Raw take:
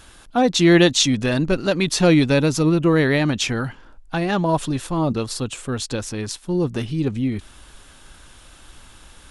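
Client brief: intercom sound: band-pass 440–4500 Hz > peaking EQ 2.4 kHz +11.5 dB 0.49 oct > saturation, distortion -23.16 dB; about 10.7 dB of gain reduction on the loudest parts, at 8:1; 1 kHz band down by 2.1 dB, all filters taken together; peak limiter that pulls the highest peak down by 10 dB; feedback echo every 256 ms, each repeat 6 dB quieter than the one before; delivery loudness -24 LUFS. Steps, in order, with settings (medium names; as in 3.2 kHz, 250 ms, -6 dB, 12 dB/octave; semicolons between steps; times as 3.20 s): peaking EQ 1 kHz -3 dB; compression 8:1, threshold -21 dBFS; peak limiter -19 dBFS; band-pass 440–4500 Hz; peaking EQ 2.4 kHz +11.5 dB 0.49 oct; feedback delay 256 ms, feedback 50%, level -6 dB; saturation -14.5 dBFS; trim +6 dB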